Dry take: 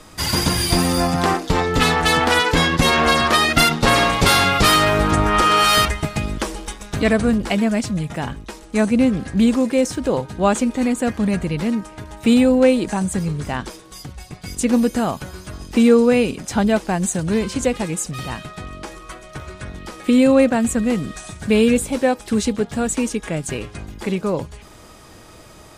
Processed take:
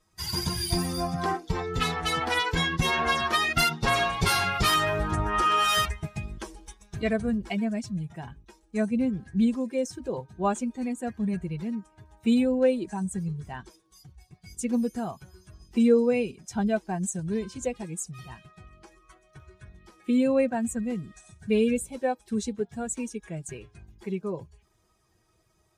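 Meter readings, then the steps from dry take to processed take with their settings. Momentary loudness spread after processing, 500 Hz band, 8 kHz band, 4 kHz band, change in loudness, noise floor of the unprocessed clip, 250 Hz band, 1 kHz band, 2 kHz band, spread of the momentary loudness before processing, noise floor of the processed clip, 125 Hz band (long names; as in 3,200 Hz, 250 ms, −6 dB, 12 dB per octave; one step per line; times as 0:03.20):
15 LU, −9.5 dB, −10.5 dB, −10.0 dB, −9.5 dB, −43 dBFS, −10.0 dB, −9.0 dB, −9.5 dB, 19 LU, −67 dBFS, −9.5 dB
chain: spectral dynamics exaggerated over time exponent 1.5
notch comb filter 290 Hz
level −5.5 dB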